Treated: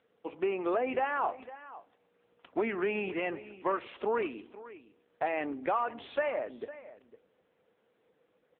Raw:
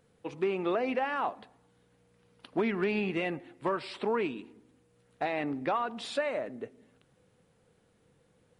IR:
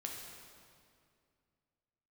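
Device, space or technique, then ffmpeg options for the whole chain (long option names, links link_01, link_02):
satellite phone: -af "highpass=320,lowpass=3100,aecho=1:1:505:0.158,volume=1.5dB" -ar 8000 -c:a libopencore_amrnb -b:a 6700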